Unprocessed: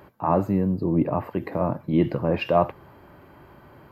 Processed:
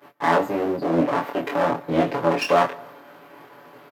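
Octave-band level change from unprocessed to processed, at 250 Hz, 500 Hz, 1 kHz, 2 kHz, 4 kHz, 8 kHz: −1.0 dB, +3.0 dB, +5.0 dB, +10.0 dB, +7.0 dB, can't be measured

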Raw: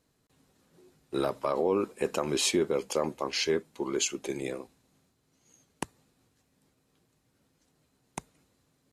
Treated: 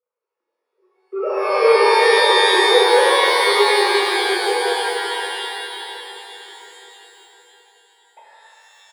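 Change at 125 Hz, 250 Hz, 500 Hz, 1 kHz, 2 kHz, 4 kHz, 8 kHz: below −20 dB, +3.5 dB, +14.5 dB, +21.0 dB, +23.0 dB, +17.5 dB, +5.0 dB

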